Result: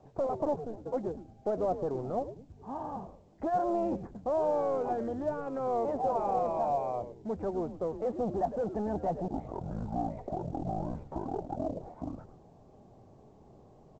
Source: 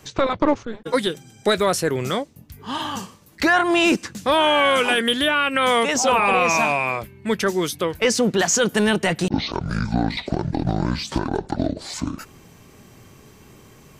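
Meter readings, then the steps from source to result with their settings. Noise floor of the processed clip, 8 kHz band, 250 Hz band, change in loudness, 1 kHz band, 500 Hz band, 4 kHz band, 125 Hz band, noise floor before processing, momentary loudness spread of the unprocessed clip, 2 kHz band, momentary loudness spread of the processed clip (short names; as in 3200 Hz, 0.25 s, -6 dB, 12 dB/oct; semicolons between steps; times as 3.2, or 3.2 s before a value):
-58 dBFS, under -35 dB, -13.0 dB, -13.0 dB, -11.0 dB, -9.5 dB, under -40 dB, -13.0 dB, -49 dBFS, 11 LU, -34.0 dB, 10 LU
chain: soft clip -19.5 dBFS, distortion -10 dB; ladder low-pass 820 Hz, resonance 60%; on a send: frequency-shifting echo 0.106 s, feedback 32%, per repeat -140 Hz, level -11 dB; on the sum: µ-law 128 kbps 16000 Hz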